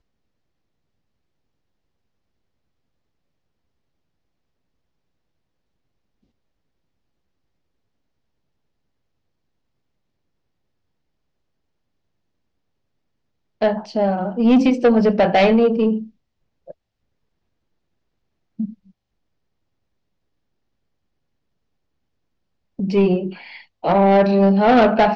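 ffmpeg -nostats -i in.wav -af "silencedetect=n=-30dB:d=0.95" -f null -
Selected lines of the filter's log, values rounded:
silence_start: 0.00
silence_end: 13.61 | silence_duration: 13.61
silence_start: 16.71
silence_end: 18.60 | silence_duration: 1.89
silence_start: 18.70
silence_end: 22.79 | silence_duration: 4.09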